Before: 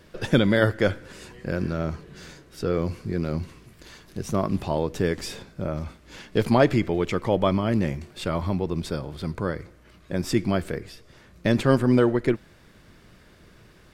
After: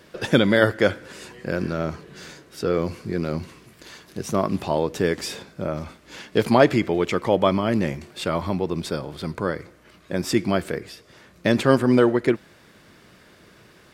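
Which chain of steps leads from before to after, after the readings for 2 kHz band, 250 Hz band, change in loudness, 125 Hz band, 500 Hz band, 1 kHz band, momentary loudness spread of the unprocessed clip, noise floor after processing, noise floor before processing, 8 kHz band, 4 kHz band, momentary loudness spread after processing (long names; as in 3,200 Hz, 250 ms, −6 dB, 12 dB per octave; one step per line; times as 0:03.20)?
+4.0 dB, +1.5 dB, +2.0 dB, −1.5 dB, +3.0 dB, +4.0 dB, 17 LU, −53 dBFS, −54 dBFS, +4.0 dB, +4.0 dB, 17 LU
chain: high-pass filter 210 Hz 6 dB per octave
level +4 dB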